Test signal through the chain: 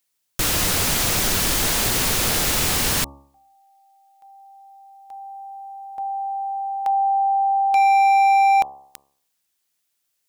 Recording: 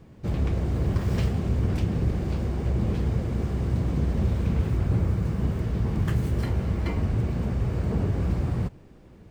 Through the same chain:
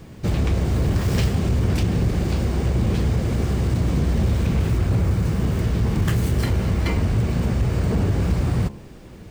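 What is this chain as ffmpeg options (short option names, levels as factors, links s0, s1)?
-filter_complex "[0:a]highshelf=f=2600:g=8,bandreject=f=69.47:t=h:w=4,bandreject=f=138.94:t=h:w=4,bandreject=f=208.41:t=h:w=4,bandreject=f=277.88:t=h:w=4,bandreject=f=347.35:t=h:w=4,bandreject=f=416.82:t=h:w=4,bandreject=f=486.29:t=h:w=4,bandreject=f=555.76:t=h:w=4,bandreject=f=625.23:t=h:w=4,bandreject=f=694.7:t=h:w=4,bandreject=f=764.17:t=h:w=4,bandreject=f=833.64:t=h:w=4,bandreject=f=903.11:t=h:w=4,bandreject=f=972.58:t=h:w=4,bandreject=f=1042.05:t=h:w=4,bandreject=f=1111.52:t=h:w=4,bandreject=f=1180.99:t=h:w=4,asplit=2[s0][s1];[s1]acompressor=threshold=0.0355:ratio=12,volume=1.06[s2];[s0][s2]amix=inputs=2:normalize=0,asoftclip=type=hard:threshold=0.158,volume=1.33"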